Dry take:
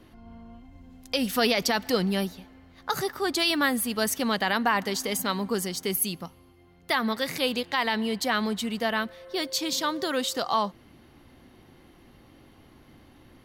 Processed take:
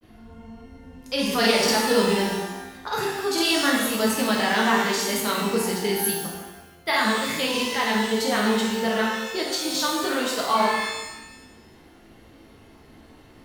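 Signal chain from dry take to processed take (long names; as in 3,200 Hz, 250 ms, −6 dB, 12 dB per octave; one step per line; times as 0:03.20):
granular cloud, spray 33 ms, pitch spread up and down by 0 semitones
reverb with rising layers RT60 1 s, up +12 semitones, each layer −8 dB, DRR −3 dB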